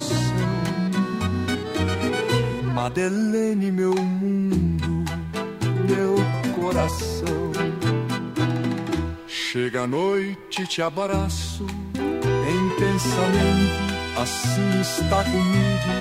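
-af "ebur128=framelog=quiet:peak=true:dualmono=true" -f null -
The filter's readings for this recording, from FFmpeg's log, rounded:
Integrated loudness:
  I:         -20.1 LUFS
  Threshold: -30.1 LUFS
Loudness range:
  LRA:         3.4 LU
  Threshold: -40.3 LUFS
  LRA low:   -21.8 LUFS
  LRA high:  -18.5 LUFS
True peak:
  Peak:       -7.9 dBFS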